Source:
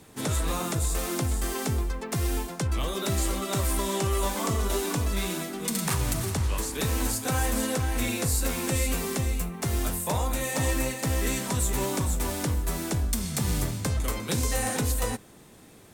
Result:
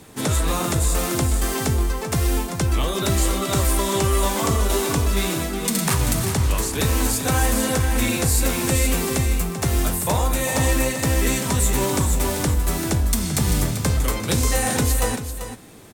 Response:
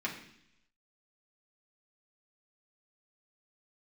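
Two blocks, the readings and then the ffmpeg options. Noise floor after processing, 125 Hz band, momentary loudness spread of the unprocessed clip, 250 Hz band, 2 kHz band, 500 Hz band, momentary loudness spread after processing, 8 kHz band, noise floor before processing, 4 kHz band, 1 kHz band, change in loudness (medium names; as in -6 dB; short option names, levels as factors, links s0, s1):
-30 dBFS, +7.0 dB, 3 LU, +7.0 dB, +7.0 dB, +7.0 dB, 3 LU, +7.0 dB, -51 dBFS, +7.0 dB, +7.0 dB, +7.0 dB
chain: -af "aecho=1:1:389:0.316,volume=2.11"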